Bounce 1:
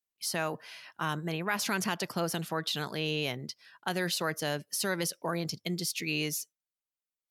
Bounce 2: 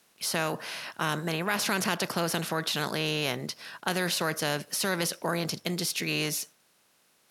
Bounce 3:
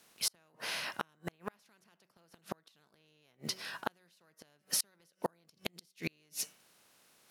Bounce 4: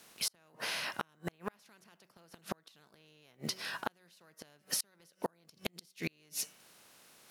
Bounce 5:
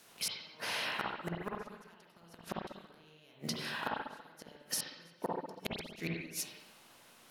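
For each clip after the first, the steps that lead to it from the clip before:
spectral levelling over time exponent 0.6
de-hum 188.6 Hz, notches 16; short-mantissa float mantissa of 4-bit; inverted gate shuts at -19 dBFS, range -39 dB
compression 2:1, threshold -43 dBFS, peak gain reduction 8.5 dB; trim +5.5 dB
reverberation RT60 0.95 s, pre-delay 47 ms, DRR -2.5 dB; trim -2 dB

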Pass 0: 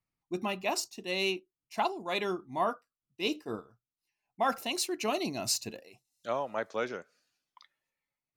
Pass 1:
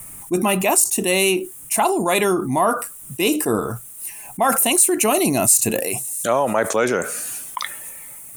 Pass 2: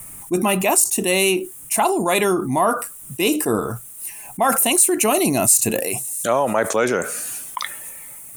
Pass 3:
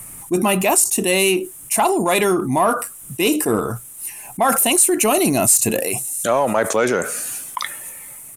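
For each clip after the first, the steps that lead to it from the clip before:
resonant high shelf 6.7 kHz +13.5 dB, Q 3; level flattener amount 70%; trim +2.5 dB
no audible change
in parallel at -6.5 dB: hard clipper -15 dBFS, distortion -11 dB; on the sum: resampled via 32 kHz; trim -1.5 dB

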